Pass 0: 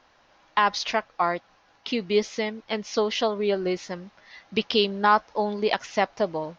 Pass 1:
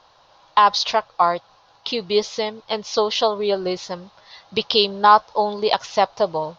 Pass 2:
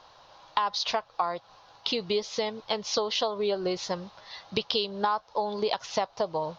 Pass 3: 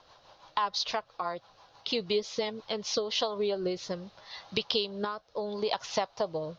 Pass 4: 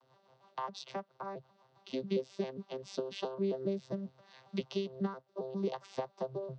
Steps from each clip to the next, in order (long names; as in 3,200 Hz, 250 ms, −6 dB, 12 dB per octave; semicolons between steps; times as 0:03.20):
graphic EQ with 10 bands 125 Hz +7 dB, 250 Hz −7 dB, 500 Hz +4 dB, 1,000 Hz +8 dB, 2,000 Hz −7 dB, 4,000 Hz +10 dB; level +1 dB
downward compressor 6 to 1, threshold −25 dBFS, peak gain reduction 16.5 dB
rotating-speaker cabinet horn 6 Hz, later 0.7 Hz, at 0:02.44
vocoder with an arpeggio as carrier bare fifth, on C3, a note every 135 ms; level −4.5 dB